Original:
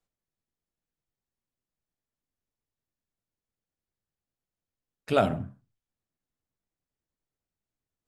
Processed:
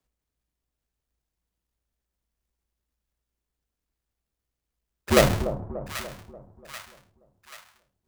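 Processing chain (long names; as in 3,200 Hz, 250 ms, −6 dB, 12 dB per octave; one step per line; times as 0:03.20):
each half-wave held at its own peak
frequency shifter −58 Hz
echo with a time of its own for lows and highs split 980 Hz, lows 292 ms, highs 785 ms, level −11 dB
level +1 dB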